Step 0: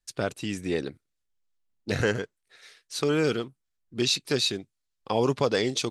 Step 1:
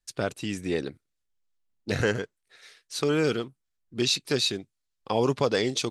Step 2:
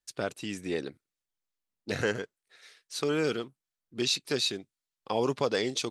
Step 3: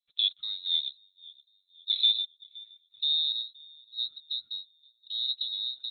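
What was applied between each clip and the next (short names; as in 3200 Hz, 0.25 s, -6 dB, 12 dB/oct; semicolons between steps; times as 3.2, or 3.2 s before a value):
nothing audible
low shelf 100 Hz -12 dB; gain -3 dB
low-pass sweep 620 Hz -> 200 Hz, 1.42–3.73; band-limited delay 0.52 s, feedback 45%, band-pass 570 Hz, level -22 dB; inverted band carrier 4000 Hz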